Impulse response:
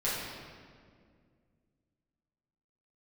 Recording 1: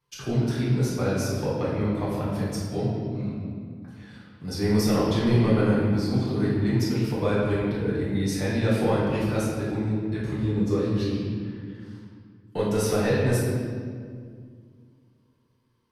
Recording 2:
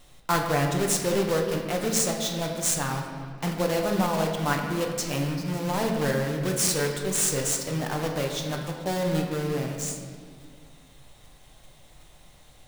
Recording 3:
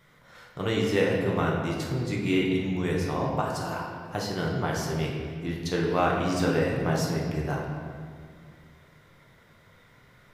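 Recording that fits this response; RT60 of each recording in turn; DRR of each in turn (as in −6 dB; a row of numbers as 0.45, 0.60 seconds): 1; 2.0, 2.1, 2.1 seconds; −10.0, 1.5, −3.0 decibels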